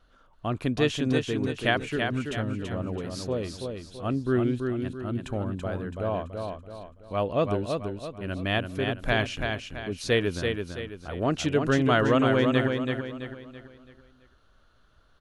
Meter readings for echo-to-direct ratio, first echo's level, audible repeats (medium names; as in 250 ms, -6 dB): -4.0 dB, -5.0 dB, 4